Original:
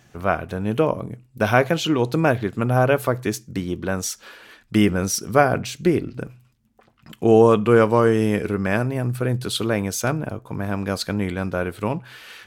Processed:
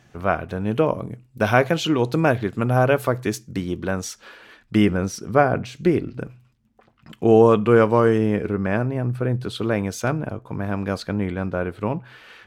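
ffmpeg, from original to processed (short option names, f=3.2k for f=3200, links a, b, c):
-af "asetnsamples=n=441:p=0,asendcmd='0.89 lowpass f 9100;3.91 lowpass f 3800;4.97 lowpass f 1900;5.75 lowpass f 4100;8.18 lowpass f 1600;9.64 lowpass f 3200;11 lowpass f 1800',lowpass=f=4.8k:p=1"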